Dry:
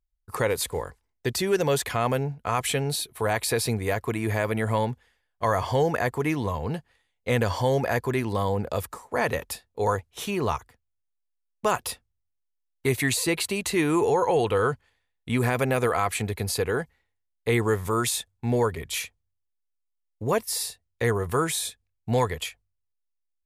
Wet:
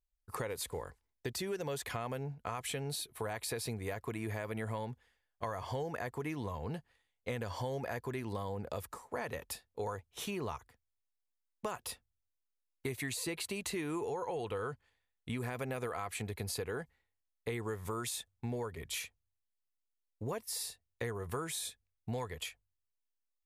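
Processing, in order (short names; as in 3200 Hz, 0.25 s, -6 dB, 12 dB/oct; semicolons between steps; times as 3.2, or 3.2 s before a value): compressor, threshold -28 dBFS, peak gain reduction 10 dB; gain -7 dB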